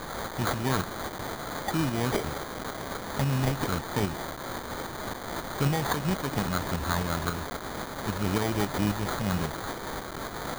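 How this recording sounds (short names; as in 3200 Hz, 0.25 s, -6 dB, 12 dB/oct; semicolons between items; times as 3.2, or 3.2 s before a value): a quantiser's noise floor 6-bit, dither triangular; tremolo saw up 3.7 Hz, depth 45%; aliases and images of a low sample rate 2700 Hz, jitter 0%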